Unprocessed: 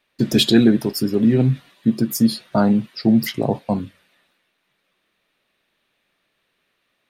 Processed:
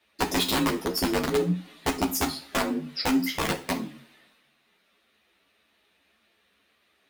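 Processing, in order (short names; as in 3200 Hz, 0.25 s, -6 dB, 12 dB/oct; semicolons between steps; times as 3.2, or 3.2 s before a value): compressor 5:1, threshold -25 dBFS, peak gain reduction 15 dB; frequency shift +42 Hz; wrapped overs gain 19 dB; two-slope reverb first 0.37 s, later 1.6 s, from -25 dB, DRR 5.5 dB; ensemble effect; gain +4.5 dB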